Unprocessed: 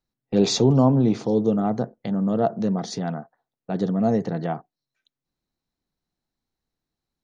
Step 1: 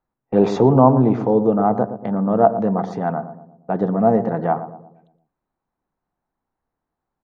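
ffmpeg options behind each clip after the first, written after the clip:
ffmpeg -i in.wav -filter_complex "[0:a]firequalizer=gain_entry='entry(150,0);entry(900,11);entry(2200,-2);entry(4300,-17)':delay=0.05:min_phase=1,asplit=2[link_01][link_02];[link_02]adelay=117,lowpass=frequency=830:poles=1,volume=-10dB,asplit=2[link_03][link_04];[link_04]adelay=117,lowpass=frequency=830:poles=1,volume=0.52,asplit=2[link_05][link_06];[link_06]adelay=117,lowpass=frequency=830:poles=1,volume=0.52,asplit=2[link_07][link_08];[link_08]adelay=117,lowpass=frequency=830:poles=1,volume=0.52,asplit=2[link_09][link_10];[link_10]adelay=117,lowpass=frequency=830:poles=1,volume=0.52,asplit=2[link_11][link_12];[link_12]adelay=117,lowpass=frequency=830:poles=1,volume=0.52[link_13];[link_03][link_05][link_07][link_09][link_11][link_13]amix=inputs=6:normalize=0[link_14];[link_01][link_14]amix=inputs=2:normalize=0,volume=1dB" out.wav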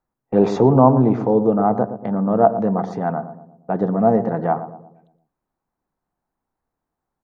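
ffmpeg -i in.wav -af "equalizer=frequency=3200:width=1.5:gain=-3" out.wav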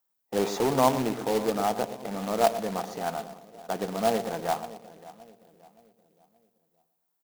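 ffmpeg -i in.wav -filter_complex "[0:a]aemphasis=mode=production:type=riaa,asplit=2[link_01][link_02];[link_02]adelay=572,lowpass=frequency=1000:poles=1,volume=-17dB,asplit=2[link_03][link_04];[link_04]adelay=572,lowpass=frequency=1000:poles=1,volume=0.45,asplit=2[link_05][link_06];[link_06]adelay=572,lowpass=frequency=1000:poles=1,volume=0.45,asplit=2[link_07][link_08];[link_08]adelay=572,lowpass=frequency=1000:poles=1,volume=0.45[link_09];[link_01][link_03][link_05][link_07][link_09]amix=inputs=5:normalize=0,acrusher=bits=2:mode=log:mix=0:aa=0.000001,volume=-7dB" out.wav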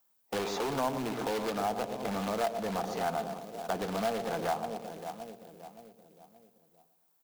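ffmpeg -i in.wav -filter_complex "[0:a]bandreject=frequency=1900:width=23,acrossover=split=880|4800[link_01][link_02][link_03];[link_01]acompressor=threshold=-34dB:ratio=4[link_04];[link_02]acompressor=threshold=-45dB:ratio=4[link_05];[link_03]acompressor=threshold=-56dB:ratio=4[link_06];[link_04][link_05][link_06]amix=inputs=3:normalize=0,acrossover=split=780[link_07][link_08];[link_07]asoftclip=type=tanh:threshold=-38dB[link_09];[link_09][link_08]amix=inputs=2:normalize=0,volume=6.5dB" out.wav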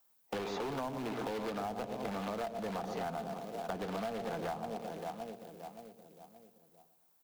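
ffmpeg -i in.wav -filter_complex "[0:a]acrossover=split=260|4200[link_01][link_02][link_03];[link_01]acompressor=threshold=-45dB:ratio=4[link_04];[link_02]acompressor=threshold=-38dB:ratio=4[link_05];[link_03]acompressor=threshold=-60dB:ratio=4[link_06];[link_04][link_05][link_06]amix=inputs=3:normalize=0,volume=1dB" out.wav

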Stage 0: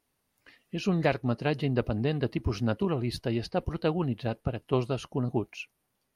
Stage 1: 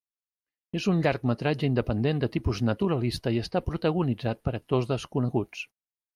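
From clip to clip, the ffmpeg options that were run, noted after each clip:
ffmpeg -i in.wav -filter_complex "[0:a]agate=range=-42dB:threshold=-46dB:ratio=16:detection=peak,asplit=2[link_01][link_02];[link_02]alimiter=limit=-20.5dB:level=0:latency=1:release=89,volume=-2.5dB[link_03];[link_01][link_03]amix=inputs=2:normalize=0,volume=-1.5dB" out.wav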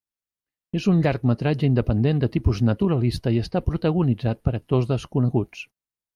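ffmpeg -i in.wav -af "lowshelf=frequency=280:gain=9" out.wav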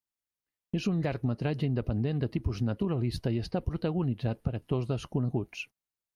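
ffmpeg -i in.wav -af "acompressor=threshold=-24dB:ratio=6,volume=-2dB" out.wav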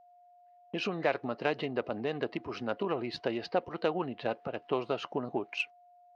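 ffmpeg -i in.wav -af "adynamicsmooth=sensitivity=3:basefreq=3300,highpass=550,lowpass=5800,aeval=exprs='val(0)+0.000562*sin(2*PI*710*n/s)':channel_layout=same,volume=8dB" out.wav

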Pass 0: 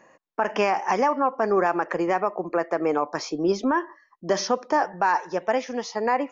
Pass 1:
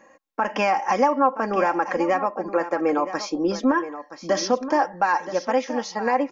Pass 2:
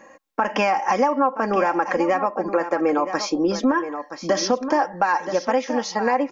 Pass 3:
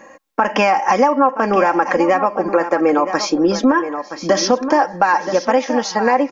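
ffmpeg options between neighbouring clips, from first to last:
ffmpeg -i in.wav -af "aecho=1:1:3.7:0.62,aecho=1:1:973:0.237" out.wav
ffmpeg -i in.wav -af "acompressor=threshold=-25dB:ratio=2,volume=5.5dB" out.wav
ffmpeg -i in.wav -af "aecho=1:1:836|1672:0.0708|0.0191,volume=5.5dB" out.wav

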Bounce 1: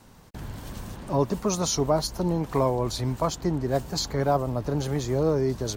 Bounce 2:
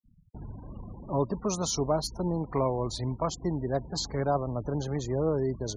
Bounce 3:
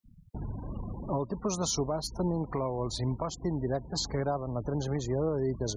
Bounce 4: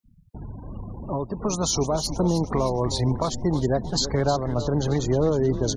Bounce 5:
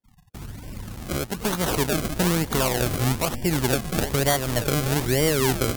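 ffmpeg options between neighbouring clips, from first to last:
ffmpeg -i in.wav -af "afftfilt=real='re*gte(hypot(re,im),0.0158)':imag='im*gte(hypot(re,im),0.0158)':win_size=1024:overlap=0.75,volume=-4dB" out.wav
ffmpeg -i in.wav -filter_complex "[0:a]asplit=2[link_01][link_02];[link_02]acompressor=threshold=-38dB:ratio=6,volume=-2dB[link_03];[link_01][link_03]amix=inputs=2:normalize=0,alimiter=limit=-20.5dB:level=0:latency=1:release=393" out.wav
ffmpeg -i in.wav -filter_complex "[0:a]asplit=2[link_01][link_02];[link_02]asplit=6[link_03][link_04][link_05][link_06][link_07][link_08];[link_03]adelay=312,afreqshift=-130,volume=-11dB[link_09];[link_04]adelay=624,afreqshift=-260,volume=-16.5dB[link_10];[link_05]adelay=936,afreqshift=-390,volume=-22dB[link_11];[link_06]adelay=1248,afreqshift=-520,volume=-27.5dB[link_12];[link_07]adelay=1560,afreqshift=-650,volume=-33.1dB[link_13];[link_08]adelay=1872,afreqshift=-780,volume=-38.6dB[link_14];[link_09][link_10][link_11][link_12][link_13][link_14]amix=inputs=6:normalize=0[link_15];[link_01][link_15]amix=inputs=2:normalize=0,dynaudnorm=framelen=220:gausssize=13:maxgain=8dB" out.wav
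ffmpeg -i in.wav -af "acrusher=samples=33:mix=1:aa=0.000001:lfo=1:lforange=33:lforate=1.1,aemphasis=mode=production:type=cd" out.wav

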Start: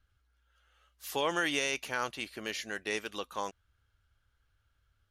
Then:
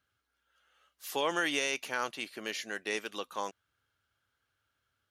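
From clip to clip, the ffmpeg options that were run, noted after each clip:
ffmpeg -i in.wav -af "highpass=180" out.wav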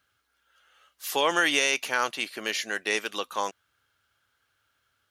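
ffmpeg -i in.wav -af "lowshelf=frequency=440:gain=-6,volume=8.5dB" out.wav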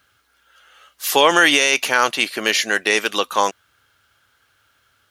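ffmpeg -i in.wav -af "alimiter=level_in=12.5dB:limit=-1dB:release=50:level=0:latency=1,volume=-1dB" out.wav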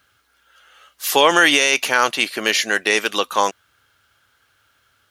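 ffmpeg -i in.wav -af anull out.wav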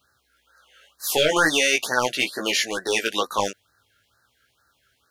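ffmpeg -i in.wav -af "aeval=exprs='clip(val(0),-1,0.316)':channel_layout=same,flanger=delay=15:depth=4.7:speed=0.42,afftfilt=real='re*(1-between(b*sr/1024,900*pow(2800/900,0.5+0.5*sin(2*PI*2.2*pts/sr))/1.41,900*pow(2800/900,0.5+0.5*sin(2*PI*2.2*pts/sr))*1.41))':imag='im*(1-between(b*sr/1024,900*pow(2800/900,0.5+0.5*sin(2*PI*2.2*pts/sr))/1.41,900*pow(2800/900,0.5+0.5*sin(2*PI*2.2*pts/sr))*1.41))':win_size=1024:overlap=0.75" out.wav

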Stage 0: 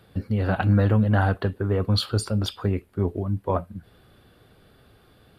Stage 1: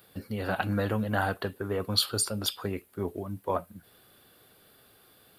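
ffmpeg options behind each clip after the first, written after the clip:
ffmpeg -i in.wav -af "aemphasis=mode=production:type=bsi,volume=-3dB" out.wav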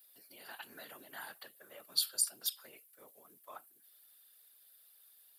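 ffmpeg -i in.wav -af "afreqshift=94,afftfilt=real='hypot(re,im)*cos(2*PI*random(0))':imag='hypot(re,im)*sin(2*PI*random(1))':win_size=512:overlap=0.75,aderivative,volume=2.5dB" out.wav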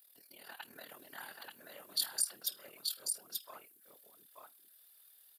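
ffmpeg -i in.wav -af "tremolo=f=38:d=0.71,aecho=1:1:882:0.668,volume=2dB" out.wav

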